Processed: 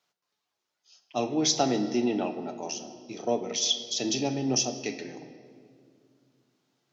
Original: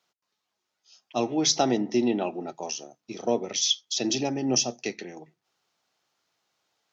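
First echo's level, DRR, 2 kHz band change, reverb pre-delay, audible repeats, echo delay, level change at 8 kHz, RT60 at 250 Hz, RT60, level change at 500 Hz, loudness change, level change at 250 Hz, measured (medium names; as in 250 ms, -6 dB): no echo, 7.0 dB, -2.0 dB, 7 ms, no echo, no echo, no reading, 3.2 s, 2.3 s, -2.0 dB, -1.5 dB, -1.5 dB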